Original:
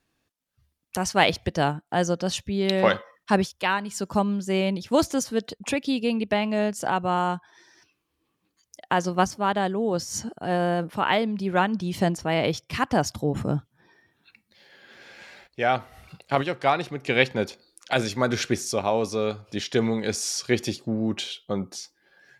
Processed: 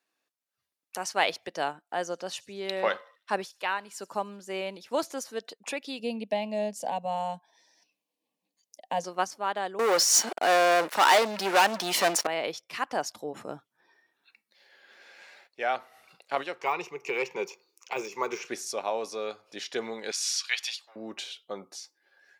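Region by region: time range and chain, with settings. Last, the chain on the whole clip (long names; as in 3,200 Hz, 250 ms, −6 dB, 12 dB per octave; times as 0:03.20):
0:01.96–0:05.32: parametric band 6,100 Hz −3.5 dB 1.7 octaves + delay with a high-pass on its return 76 ms, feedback 58%, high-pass 5,400 Hz, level −17.5 dB
0:05.99–0:09.04: low-shelf EQ 400 Hz +11 dB + phaser with its sweep stopped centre 360 Hz, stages 6
0:09.79–0:12.27: high-pass filter 160 Hz + leveller curve on the samples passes 5 + low-shelf EQ 250 Hz −11.5 dB
0:16.61–0:18.47: EQ curve with evenly spaced ripples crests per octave 0.76, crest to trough 14 dB + de-essing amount 85%
0:20.11–0:20.96: high-pass filter 910 Hz 24 dB per octave + parametric band 3,200 Hz +10 dB 1.5 octaves
whole clip: high-pass filter 460 Hz 12 dB per octave; notch filter 3,200 Hz, Q 24; level −5 dB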